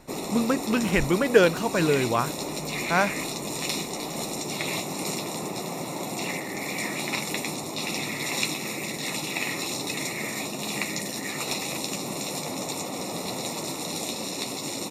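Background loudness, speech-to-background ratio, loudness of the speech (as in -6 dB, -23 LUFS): -30.0 LUFS, 6.0 dB, -24.0 LUFS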